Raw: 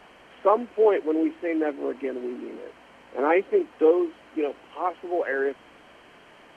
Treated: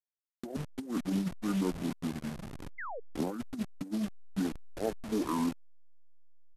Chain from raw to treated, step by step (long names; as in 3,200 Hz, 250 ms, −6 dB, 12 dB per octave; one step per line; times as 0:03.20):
hold until the input has moved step −30 dBFS
compressor whose output falls as the input rises −24 dBFS, ratio −0.5
pitch shifter −8.5 semitones
sound drawn into the spectrogram fall, 0:02.78–0:03.00, 420–2,200 Hz −33 dBFS
level −7 dB